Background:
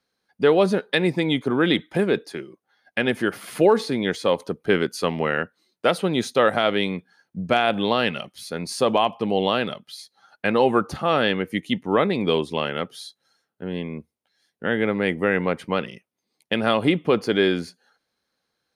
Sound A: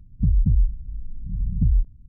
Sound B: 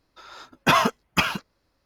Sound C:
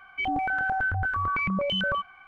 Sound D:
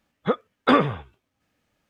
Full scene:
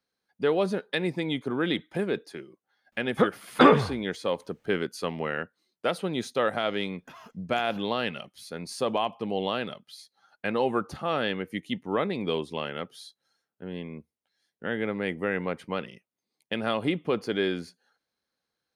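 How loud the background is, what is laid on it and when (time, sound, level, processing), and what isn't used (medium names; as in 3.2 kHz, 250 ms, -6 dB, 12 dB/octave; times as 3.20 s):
background -7.5 dB
2.92 s: add D
6.41 s: add B -16 dB + compression 12:1, threshold -28 dBFS
not used: A, C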